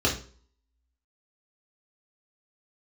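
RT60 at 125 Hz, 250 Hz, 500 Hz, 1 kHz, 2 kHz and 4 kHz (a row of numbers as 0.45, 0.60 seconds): 0.45, 0.45, 0.50, 0.40, 0.35, 0.40 seconds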